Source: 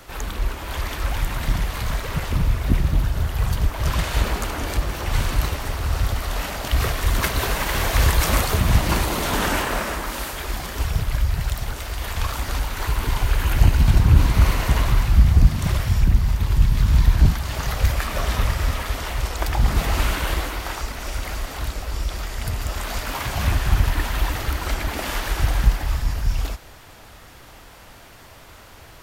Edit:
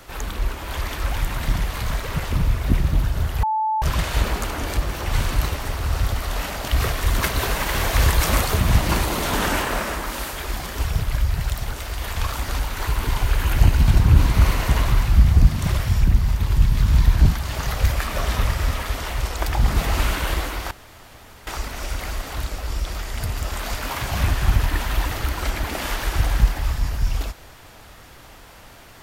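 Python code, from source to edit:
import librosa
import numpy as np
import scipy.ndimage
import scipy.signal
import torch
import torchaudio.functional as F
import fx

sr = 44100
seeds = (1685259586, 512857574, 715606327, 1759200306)

y = fx.edit(x, sr, fx.bleep(start_s=3.43, length_s=0.39, hz=872.0, db=-18.5),
    fx.insert_room_tone(at_s=20.71, length_s=0.76), tone=tone)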